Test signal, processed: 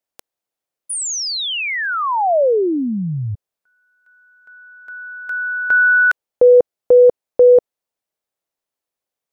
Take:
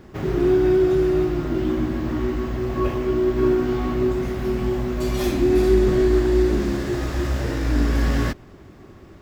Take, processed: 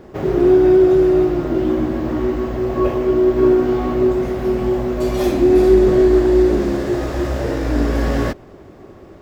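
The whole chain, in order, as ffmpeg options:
ffmpeg -i in.wav -af "equalizer=frequency=550:width_type=o:width=1.6:gain=9.5" out.wav

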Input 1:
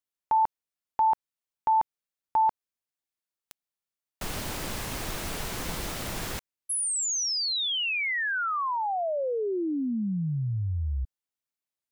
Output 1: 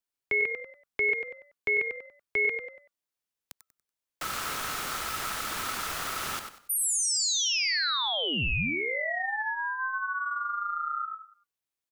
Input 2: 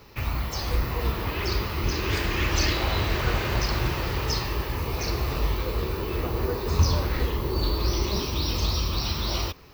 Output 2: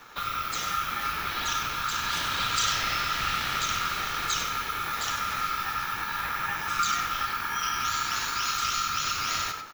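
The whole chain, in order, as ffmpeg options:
ffmpeg -i in.wav -filter_complex "[0:a]asplit=5[link_01][link_02][link_03][link_04][link_05];[link_02]adelay=95,afreqshift=-39,volume=-8dB[link_06];[link_03]adelay=190,afreqshift=-78,volume=-18.5dB[link_07];[link_04]adelay=285,afreqshift=-117,volume=-28.9dB[link_08];[link_05]adelay=380,afreqshift=-156,volume=-39.4dB[link_09];[link_01][link_06][link_07][link_08][link_09]amix=inputs=5:normalize=0,aeval=exprs='val(0)*sin(2*PI*1300*n/s)':channel_layout=same,acrossover=split=160|1700[link_10][link_11][link_12];[link_11]acompressor=threshold=-34dB:ratio=10:attack=0.71:release=355:knee=2.83:detection=peak[link_13];[link_10][link_13][link_12]amix=inputs=3:normalize=0,volume=3.5dB" out.wav

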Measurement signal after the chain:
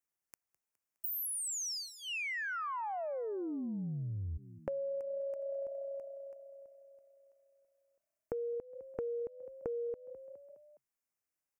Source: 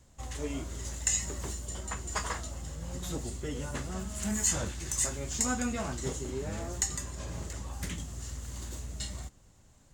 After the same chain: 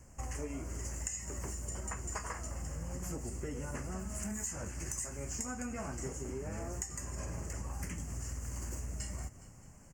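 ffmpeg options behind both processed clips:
ffmpeg -i in.wav -filter_complex "[0:a]asuperstop=centerf=3700:order=4:qfactor=1.5,asplit=5[link_01][link_02][link_03][link_04][link_05];[link_02]adelay=207,afreqshift=31,volume=-21dB[link_06];[link_03]adelay=414,afreqshift=62,volume=-25.9dB[link_07];[link_04]adelay=621,afreqshift=93,volume=-30.8dB[link_08];[link_05]adelay=828,afreqshift=124,volume=-35.6dB[link_09];[link_01][link_06][link_07][link_08][link_09]amix=inputs=5:normalize=0,acompressor=threshold=-40dB:ratio=12,volume=4dB" out.wav

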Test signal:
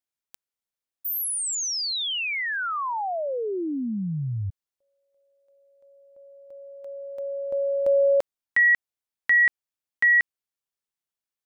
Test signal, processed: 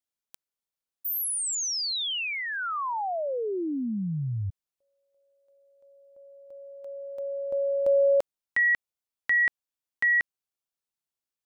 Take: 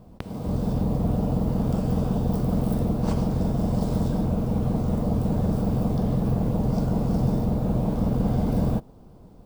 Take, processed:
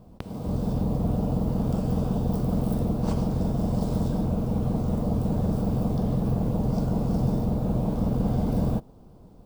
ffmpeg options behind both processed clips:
ffmpeg -i in.wav -af "equalizer=frequency=1900:width_type=o:width=0.77:gain=-3,volume=-1.5dB" out.wav

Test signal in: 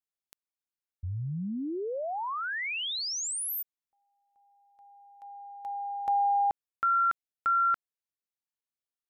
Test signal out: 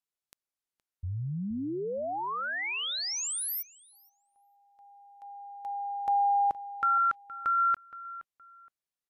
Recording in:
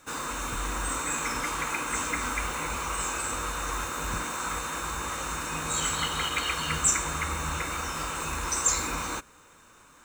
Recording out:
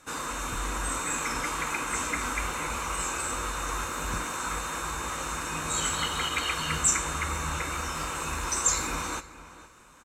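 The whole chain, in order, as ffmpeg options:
ffmpeg -i in.wav -filter_complex "[0:a]asplit=2[link_01][link_02];[link_02]adelay=469,lowpass=frequency=3000:poles=1,volume=-15.5dB,asplit=2[link_03][link_04];[link_04]adelay=469,lowpass=frequency=3000:poles=1,volume=0.24[link_05];[link_01][link_03][link_05]amix=inputs=3:normalize=0" -ar 32000 -c:a aac -b:a 96k out.aac

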